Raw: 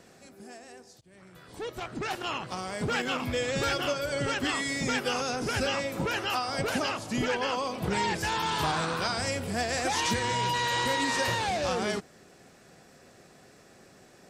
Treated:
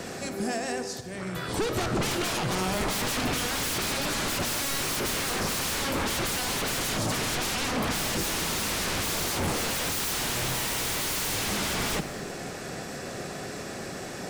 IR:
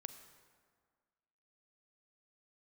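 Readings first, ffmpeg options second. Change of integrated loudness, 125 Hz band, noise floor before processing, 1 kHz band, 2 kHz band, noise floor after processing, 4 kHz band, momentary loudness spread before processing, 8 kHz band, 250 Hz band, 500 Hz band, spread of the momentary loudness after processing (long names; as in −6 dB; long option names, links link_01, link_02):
+1.0 dB, +2.5 dB, −56 dBFS, −2.5 dB, +0.5 dB, −37 dBFS, +3.0 dB, 8 LU, +8.5 dB, +2.0 dB, −1.0 dB, 9 LU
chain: -filter_complex "[0:a]aeval=exprs='0.141*sin(PI/2*8.91*val(0)/0.141)':channel_layout=same,acrossover=split=370[link_01][link_02];[link_02]acompressor=threshold=-23dB:ratio=6[link_03];[link_01][link_03]amix=inputs=2:normalize=0[link_04];[1:a]atrim=start_sample=2205[link_05];[link_04][link_05]afir=irnorm=-1:irlink=0"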